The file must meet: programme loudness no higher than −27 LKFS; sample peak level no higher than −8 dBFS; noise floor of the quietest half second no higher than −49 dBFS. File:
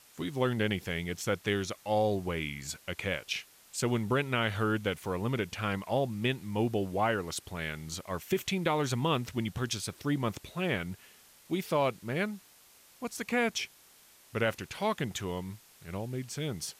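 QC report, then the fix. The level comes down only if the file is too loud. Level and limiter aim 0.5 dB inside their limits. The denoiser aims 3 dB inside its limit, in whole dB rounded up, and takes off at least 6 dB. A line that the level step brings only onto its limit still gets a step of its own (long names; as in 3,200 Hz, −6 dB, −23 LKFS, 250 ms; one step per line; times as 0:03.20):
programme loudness −32.5 LKFS: in spec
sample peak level −17.0 dBFS: in spec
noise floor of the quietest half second −59 dBFS: in spec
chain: no processing needed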